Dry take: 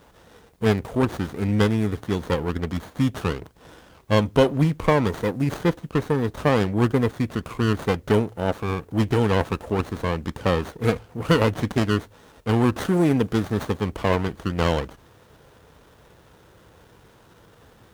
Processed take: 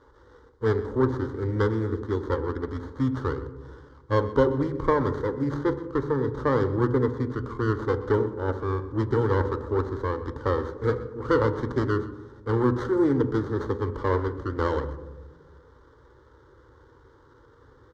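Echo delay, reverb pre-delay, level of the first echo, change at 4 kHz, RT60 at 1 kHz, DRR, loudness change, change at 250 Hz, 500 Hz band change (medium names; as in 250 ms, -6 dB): 126 ms, 3 ms, -18.0 dB, -13.5 dB, 1.1 s, 10.0 dB, -3.0 dB, -4.5 dB, -1.0 dB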